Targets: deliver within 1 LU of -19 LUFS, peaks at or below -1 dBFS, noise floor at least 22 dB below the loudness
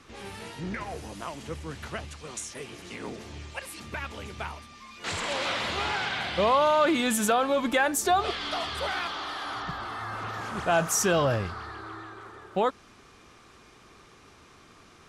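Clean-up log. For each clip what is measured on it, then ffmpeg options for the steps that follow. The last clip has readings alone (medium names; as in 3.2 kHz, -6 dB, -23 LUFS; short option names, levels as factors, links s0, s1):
loudness -28.5 LUFS; peak level -12.0 dBFS; loudness target -19.0 LUFS
-> -af "volume=2.99"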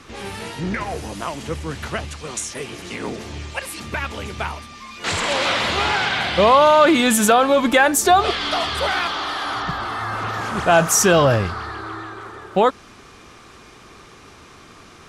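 loudness -19.0 LUFS; peak level -2.5 dBFS; noise floor -45 dBFS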